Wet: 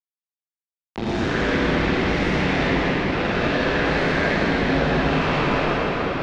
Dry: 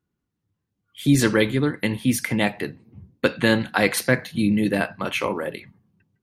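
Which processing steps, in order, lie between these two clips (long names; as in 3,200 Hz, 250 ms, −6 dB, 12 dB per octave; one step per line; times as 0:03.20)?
every bin's largest magnitude spread in time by 240 ms
low-pass that shuts in the quiet parts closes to 310 Hz, open at −10.5 dBFS
ring modulation 55 Hz
reversed playback
downward compressor 6 to 1, threshold −26 dBFS, peak gain reduction 16 dB
reversed playback
centre clipping without the shift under −24.5 dBFS
Gaussian smoothing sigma 2.1 samples
convolution reverb RT60 5.8 s, pre-delay 43 ms, DRR −11.5 dB
multiband upward and downward compressor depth 40%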